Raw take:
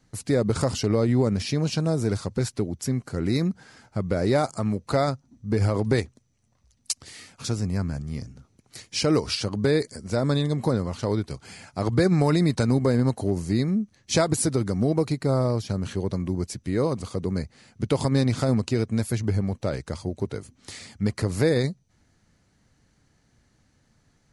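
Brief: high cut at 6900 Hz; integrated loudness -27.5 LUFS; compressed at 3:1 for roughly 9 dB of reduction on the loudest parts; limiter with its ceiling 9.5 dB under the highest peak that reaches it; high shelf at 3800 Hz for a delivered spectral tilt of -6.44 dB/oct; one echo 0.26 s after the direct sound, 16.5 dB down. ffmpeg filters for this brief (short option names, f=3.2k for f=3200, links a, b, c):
-af "lowpass=6.9k,highshelf=f=3.8k:g=-4.5,acompressor=threshold=-29dB:ratio=3,alimiter=level_in=1.5dB:limit=-24dB:level=0:latency=1,volume=-1.5dB,aecho=1:1:260:0.15,volume=8.5dB"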